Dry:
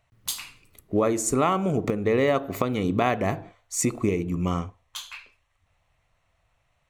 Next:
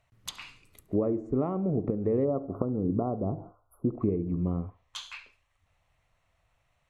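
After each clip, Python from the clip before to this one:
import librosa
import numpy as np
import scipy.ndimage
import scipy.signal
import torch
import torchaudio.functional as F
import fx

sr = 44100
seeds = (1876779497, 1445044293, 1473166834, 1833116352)

y = fx.env_lowpass_down(x, sr, base_hz=490.0, full_db=-22.5)
y = fx.spec_erase(y, sr, start_s=2.25, length_s=1.73, low_hz=1500.0, high_hz=10000.0)
y = fx.echo_thinned(y, sr, ms=70, feedback_pct=39, hz=420.0, wet_db=-22.0)
y = y * librosa.db_to_amplitude(-2.5)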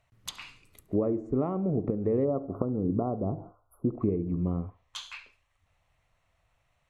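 y = x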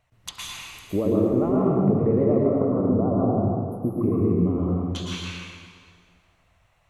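y = fx.vibrato(x, sr, rate_hz=9.2, depth_cents=61.0)
y = fx.rev_plate(y, sr, seeds[0], rt60_s=2.0, hf_ratio=0.85, predelay_ms=100, drr_db=-5.0)
y = y * librosa.db_to_amplitude(2.0)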